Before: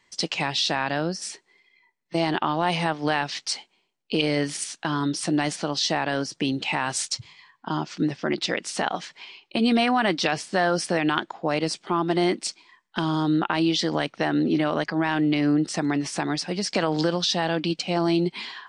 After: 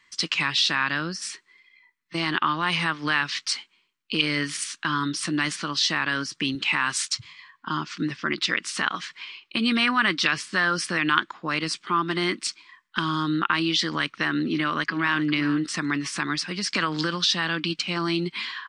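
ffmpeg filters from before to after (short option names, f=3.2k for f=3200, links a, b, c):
-filter_complex "[0:a]asettb=1/sr,asplit=3[a][b][c];[a]atrim=end=6.554[d];[b]atrim=start=6.55:end=7.11,asetpts=PTS-STARTPTS,afade=t=in:d=0.004:c=qsin,afade=t=out:st=0.556:d=0.004:c=qsin,highpass=130[e];[c]atrim=start=7.106[f];[d][e]acrossfade=d=0.004:c1=hsin:c2=qsin[g];[g][f]acrossfade=d=0.004:c1=qsin:c2=hsin,asplit=2[h][i];[i]afade=t=in:st=14.49:d=0.01,afade=t=out:st=15.26:d=0.01,aecho=0:1:400|800:0.199526|0.0299289[j];[h][j]amix=inputs=2:normalize=0,firequalizer=gain_entry='entry(300,0);entry(440,-6);entry(740,-12);entry(1100,9);entry(6100,3)':delay=0.05:min_phase=1,volume=-3dB"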